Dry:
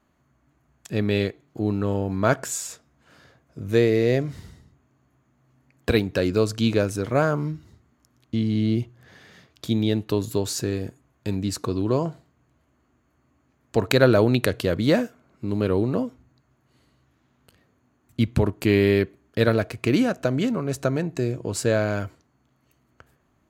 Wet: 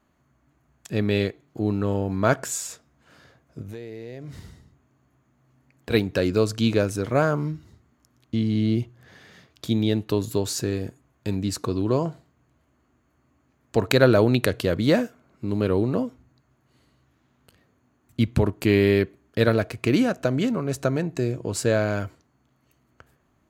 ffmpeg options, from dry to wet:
-filter_complex "[0:a]asplit=3[a][b][c];[a]afade=t=out:st=3.61:d=0.02[d];[b]acompressor=threshold=-33dB:ratio=10:attack=3.2:release=140:knee=1:detection=peak,afade=t=in:st=3.61:d=0.02,afade=t=out:st=5.9:d=0.02[e];[c]afade=t=in:st=5.9:d=0.02[f];[d][e][f]amix=inputs=3:normalize=0"

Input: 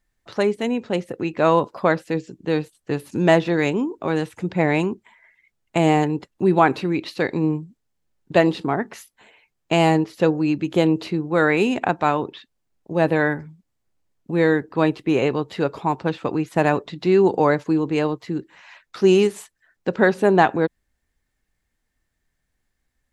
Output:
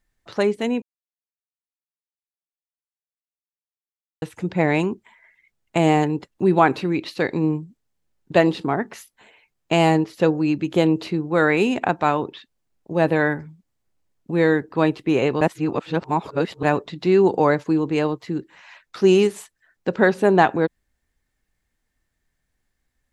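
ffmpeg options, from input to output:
-filter_complex "[0:a]asplit=5[a][b][c][d][e];[a]atrim=end=0.82,asetpts=PTS-STARTPTS,afade=t=out:st=0.816:d=0.004:c=hsin[f];[b]atrim=start=0.82:end=4.22,asetpts=PTS-STARTPTS,volume=0[g];[c]atrim=start=4.22:end=15.412,asetpts=PTS-STARTPTS,afade=t=in:d=0.004:c=hsin[h];[d]atrim=start=15.408:end=16.632,asetpts=PTS-STARTPTS,areverse[i];[e]atrim=start=16.628[j];[f][g][h]concat=n=3:v=0:a=1[k];[k][i]acrossfade=d=0.004:c1=hsin:c2=hsin[l];[l][j]acrossfade=d=0.004:c1=hsin:c2=hsin"

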